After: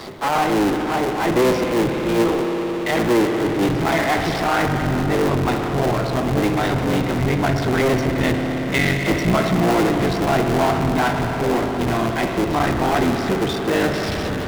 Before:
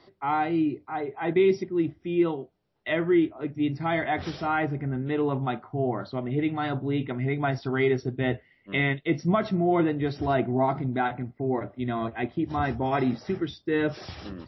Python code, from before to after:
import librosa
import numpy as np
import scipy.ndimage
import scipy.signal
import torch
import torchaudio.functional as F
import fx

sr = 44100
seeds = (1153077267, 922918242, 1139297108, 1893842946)

y = fx.cycle_switch(x, sr, every=3, mode='muted')
y = fx.rev_spring(y, sr, rt60_s=4.0, pass_ms=(58,), chirp_ms=25, drr_db=8.0)
y = fx.power_curve(y, sr, exponent=0.5)
y = F.gain(torch.from_numpy(y), 2.5).numpy()